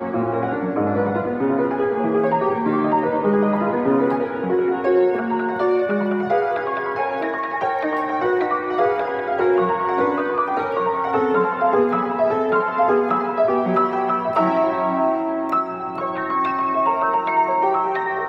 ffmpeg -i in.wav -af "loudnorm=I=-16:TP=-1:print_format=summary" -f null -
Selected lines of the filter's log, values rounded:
Input Integrated:    -20.2 LUFS
Input True Peak:      -7.8 dBTP
Input LRA:             1.6 LU
Input Threshold:     -30.2 LUFS